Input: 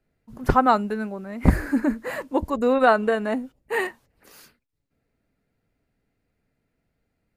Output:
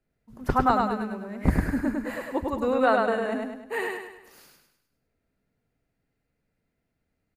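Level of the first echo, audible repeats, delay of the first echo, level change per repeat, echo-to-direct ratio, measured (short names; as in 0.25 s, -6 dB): -3.0 dB, 5, 0.102 s, -7.0 dB, -2.0 dB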